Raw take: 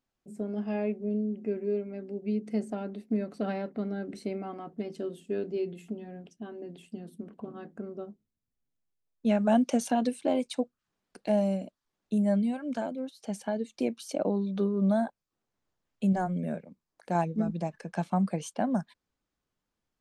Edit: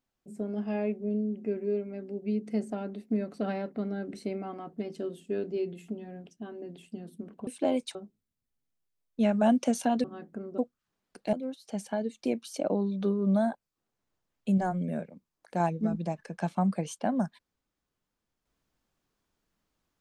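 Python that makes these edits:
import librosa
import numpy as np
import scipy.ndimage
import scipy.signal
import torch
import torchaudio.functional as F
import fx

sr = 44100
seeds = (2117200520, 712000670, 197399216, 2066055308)

y = fx.edit(x, sr, fx.swap(start_s=7.47, length_s=0.54, other_s=10.1, other_length_s=0.48),
    fx.cut(start_s=11.33, length_s=1.55), tone=tone)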